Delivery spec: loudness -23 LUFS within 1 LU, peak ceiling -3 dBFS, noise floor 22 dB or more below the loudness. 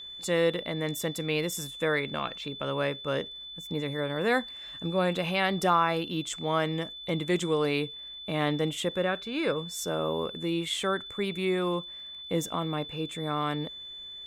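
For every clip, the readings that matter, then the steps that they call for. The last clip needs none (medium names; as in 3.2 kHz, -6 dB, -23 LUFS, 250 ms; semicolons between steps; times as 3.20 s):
tick rate 23 per s; steady tone 3.5 kHz; tone level -40 dBFS; loudness -30.0 LUFS; peak level -12.5 dBFS; loudness target -23.0 LUFS
-> de-click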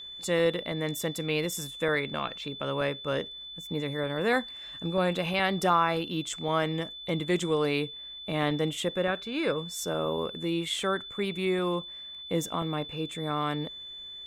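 tick rate 0.070 per s; steady tone 3.5 kHz; tone level -40 dBFS
-> band-stop 3.5 kHz, Q 30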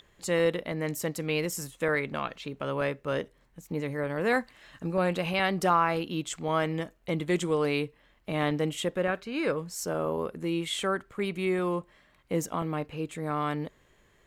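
steady tone not found; loudness -30.0 LUFS; peak level -13.0 dBFS; loudness target -23.0 LUFS
-> trim +7 dB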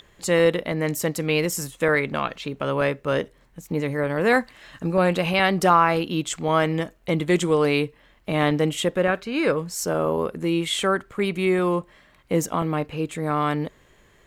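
loudness -23.0 LUFS; peak level -6.0 dBFS; noise floor -57 dBFS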